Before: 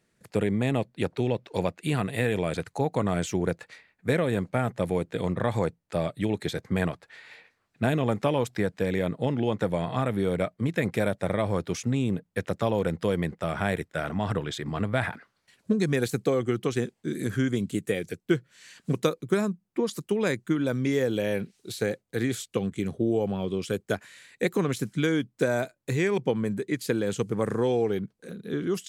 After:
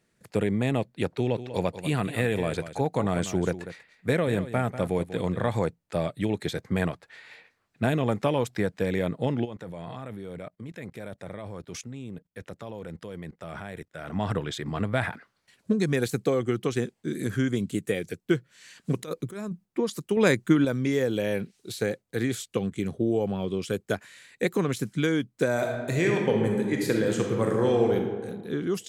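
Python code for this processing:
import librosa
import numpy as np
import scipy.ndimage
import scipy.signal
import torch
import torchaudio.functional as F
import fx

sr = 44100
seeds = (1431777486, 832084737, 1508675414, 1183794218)

y = fx.echo_single(x, sr, ms=192, db=-12.5, at=(1.27, 5.48), fade=0.02)
y = fx.level_steps(y, sr, step_db=19, at=(9.44, 14.12), fade=0.02)
y = fx.over_compress(y, sr, threshold_db=-32.0, ratio=-1.0, at=(18.98, 19.64), fade=0.02)
y = fx.reverb_throw(y, sr, start_s=25.52, length_s=2.43, rt60_s=1.5, drr_db=0.5)
y = fx.edit(y, sr, fx.clip_gain(start_s=20.17, length_s=0.48, db=5.5), tone=tone)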